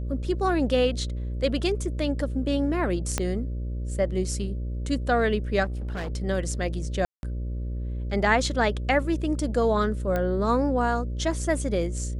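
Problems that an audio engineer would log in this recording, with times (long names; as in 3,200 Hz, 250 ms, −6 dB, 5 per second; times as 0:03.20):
mains buzz 60 Hz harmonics 10 −30 dBFS
0:03.18: click −10 dBFS
0:05.64–0:06.12: clipping −28 dBFS
0:07.05–0:07.23: drop-out 181 ms
0:10.16: click −15 dBFS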